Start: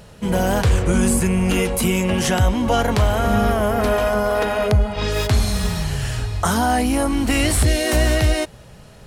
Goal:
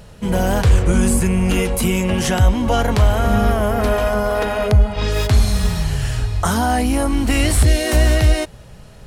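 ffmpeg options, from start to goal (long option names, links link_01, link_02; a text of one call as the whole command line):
ffmpeg -i in.wav -af "lowshelf=frequency=71:gain=8" out.wav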